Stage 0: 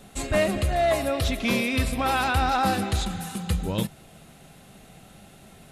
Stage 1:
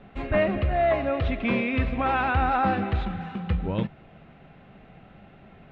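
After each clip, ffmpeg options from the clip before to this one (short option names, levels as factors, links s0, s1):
-af "lowpass=f=2600:w=0.5412,lowpass=f=2600:w=1.3066"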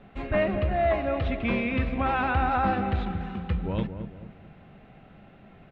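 -filter_complex "[0:a]asplit=2[s0][s1];[s1]adelay=221,lowpass=f=800:p=1,volume=0.398,asplit=2[s2][s3];[s3]adelay=221,lowpass=f=800:p=1,volume=0.42,asplit=2[s4][s5];[s5]adelay=221,lowpass=f=800:p=1,volume=0.42,asplit=2[s6][s7];[s7]adelay=221,lowpass=f=800:p=1,volume=0.42,asplit=2[s8][s9];[s9]adelay=221,lowpass=f=800:p=1,volume=0.42[s10];[s0][s2][s4][s6][s8][s10]amix=inputs=6:normalize=0,volume=0.794"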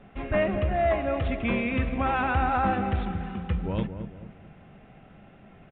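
-af "aresample=8000,aresample=44100"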